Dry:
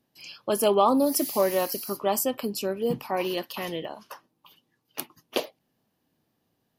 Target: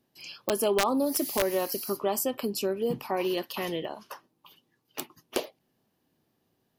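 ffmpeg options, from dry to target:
-af "equalizer=f=380:t=o:w=0.24:g=4.5,acompressor=threshold=0.0501:ratio=2,aeval=exprs='(mod(5.96*val(0)+1,2)-1)/5.96':c=same"

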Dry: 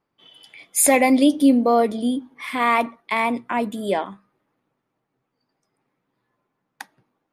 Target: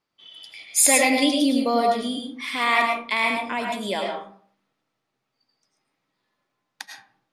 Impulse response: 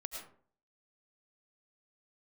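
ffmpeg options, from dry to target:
-filter_complex "[0:a]equalizer=f=4600:w=0.51:g=14[s0];[1:a]atrim=start_sample=2205[s1];[s0][s1]afir=irnorm=-1:irlink=0,volume=0.668"

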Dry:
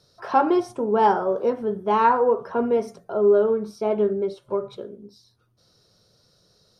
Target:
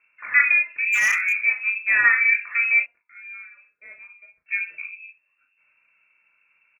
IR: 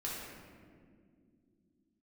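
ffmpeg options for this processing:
-filter_complex "[0:a]asettb=1/sr,asplit=3[s0][s1][s2];[s0]atrim=end=2.824[s3];[s1]atrim=start=2.82:end=4.46,asetpts=PTS-STARTPTS,afade=t=in:d=0.004:c=qsin,afade=t=out:st=1.636:d=0.004:c=qsin,aderivative[s4];[s2]atrim=start=4.456[s5];[s3][s4]acrossfade=d=0.004:c1=hsin:c2=qsin[s6];[s6][s5]acrossfade=d=0.004:c1=qsin:c2=hsin,lowpass=f=2400:t=q:w=0.5098,lowpass=f=2400:t=q:w=0.6013,lowpass=f=2400:t=q:w=0.9,lowpass=f=2400:t=q:w=2.563,afreqshift=-2800,asplit=2[s7][s8];[s8]aecho=0:1:24|36:0.237|0.447[s9];[s7][s9]amix=inputs=2:normalize=0,asettb=1/sr,asplit=3[s10][s11][s12];[s10]atrim=end=0.864[s13];[s11]atrim=start=0.86:end=1.4,asetpts=PTS-STARTPTS,afade=t=in:d=0.004:c=qsin,afade=t=out:st=0.536:d=0.004:c=qsin,volume=6.31,asoftclip=hard,volume=0.158[s14];[s12]atrim=start=1.396[s15];[s13][s14]acrossfade=d=0.004:c1=hsin:c2=qsin[s16];[s16][s15]acrossfade=d=0.004:c1=qsin:c2=hsin"

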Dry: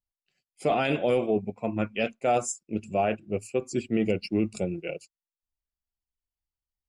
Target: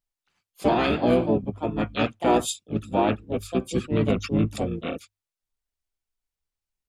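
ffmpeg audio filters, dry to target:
-filter_complex "[0:a]asplit=4[s0][s1][s2][s3];[s1]asetrate=22050,aresample=44100,atempo=2,volume=0.891[s4];[s2]asetrate=29433,aresample=44100,atempo=1.49831,volume=0.316[s5];[s3]asetrate=58866,aresample=44100,atempo=0.749154,volume=0.562[s6];[s0][s4][s5][s6]amix=inputs=4:normalize=0,bandreject=f=50:t=h:w=6,bandreject=f=100:t=h:w=6"

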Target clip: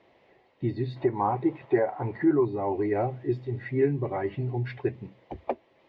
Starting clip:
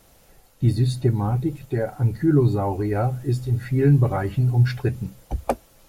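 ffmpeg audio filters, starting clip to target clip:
-filter_complex "[0:a]asettb=1/sr,asplit=3[s0][s1][s2];[s0]atrim=end=0.964[s3];[s1]atrim=start=0.96:end=2.45,asetpts=PTS-STARTPTS,afade=t=in:d=0.004:c=qsin,afade=t=out:st=1.486:d=0.004:c=qsin,equalizer=f=1000:w=0.69:g=14[s4];[s2]atrim=start=2.446[s5];[s3][s4]acrossfade=d=0.004:c1=hsin:c2=qsin[s6];[s6][s5]acrossfade=d=0.004:c1=qsin:c2=hsin,alimiter=limit=0.237:level=0:latency=1:release=397,highpass=150,equalizer=f=170:t=q:w=4:g=-7,equalizer=f=370:t=q:w=4:g=9,equalizer=f=640:t=q:w=4:g=4,equalizer=f=980:t=q:w=4:g=5,equalizer=f=1400:t=q:w=4:g=-8,equalizer=f=2000:t=q:w=4:g=8,lowpass=f=3400:w=0.5412,lowpass=f=3400:w=1.3066,volume=0.562"

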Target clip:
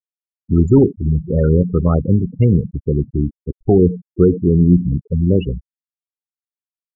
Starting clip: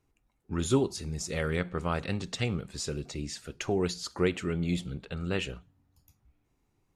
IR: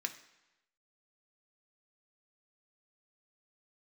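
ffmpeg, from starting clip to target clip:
-filter_complex "[0:a]asplit=2[s0][s1];[1:a]atrim=start_sample=2205,afade=t=out:st=0.13:d=0.01,atrim=end_sample=6174,adelay=92[s2];[s1][s2]afir=irnorm=-1:irlink=0,volume=0.168[s3];[s0][s3]amix=inputs=2:normalize=0,apsyclip=10.6,tiltshelf=f=650:g=7,afftfilt=real='re*gte(hypot(re,im),0.631)':imag='im*gte(hypot(re,im),0.631)':win_size=1024:overlap=0.75,volume=0.422"

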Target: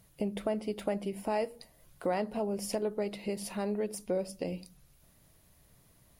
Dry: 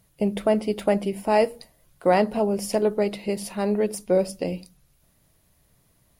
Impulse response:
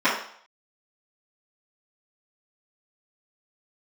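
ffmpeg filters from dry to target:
-af "acompressor=threshold=0.0126:ratio=2"

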